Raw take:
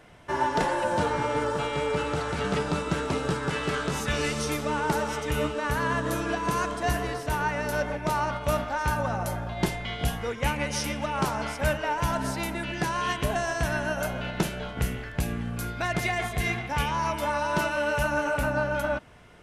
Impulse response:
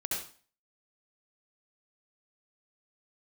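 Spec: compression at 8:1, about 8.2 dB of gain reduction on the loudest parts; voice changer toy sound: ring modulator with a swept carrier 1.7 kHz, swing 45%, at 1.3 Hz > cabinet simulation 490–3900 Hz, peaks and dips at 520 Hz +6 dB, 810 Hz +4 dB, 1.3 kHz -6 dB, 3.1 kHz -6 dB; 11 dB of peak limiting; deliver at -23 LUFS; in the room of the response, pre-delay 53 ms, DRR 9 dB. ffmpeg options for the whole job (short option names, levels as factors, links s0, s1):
-filter_complex "[0:a]acompressor=threshold=0.0355:ratio=8,alimiter=level_in=1.26:limit=0.0631:level=0:latency=1,volume=0.794,asplit=2[s0][s1];[1:a]atrim=start_sample=2205,adelay=53[s2];[s1][s2]afir=irnorm=-1:irlink=0,volume=0.224[s3];[s0][s3]amix=inputs=2:normalize=0,aeval=exprs='val(0)*sin(2*PI*1700*n/s+1700*0.45/1.3*sin(2*PI*1.3*n/s))':c=same,highpass=490,equalizer=f=520:t=q:w=4:g=6,equalizer=f=810:t=q:w=4:g=4,equalizer=f=1300:t=q:w=4:g=-6,equalizer=f=3100:t=q:w=4:g=-6,lowpass=f=3900:w=0.5412,lowpass=f=3900:w=1.3066,volume=5.62"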